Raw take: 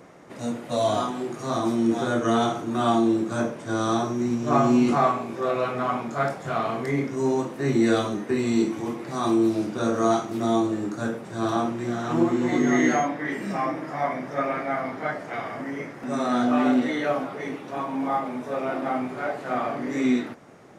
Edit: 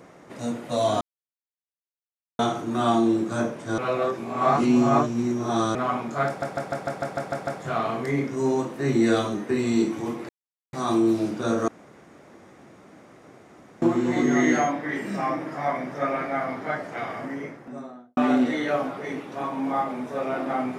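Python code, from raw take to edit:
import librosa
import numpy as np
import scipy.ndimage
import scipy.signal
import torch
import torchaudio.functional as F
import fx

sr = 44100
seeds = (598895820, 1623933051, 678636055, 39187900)

y = fx.studio_fade_out(x, sr, start_s=15.55, length_s=0.98)
y = fx.edit(y, sr, fx.silence(start_s=1.01, length_s=1.38),
    fx.reverse_span(start_s=3.78, length_s=1.97),
    fx.stutter(start_s=6.27, slice_s=0.15, count=9),
    fx.insert_silence(at_s=9.09, length_s=0.44),
    fx.room_tone_fill(start_s=10.04, length_s=2.14), tone=tone)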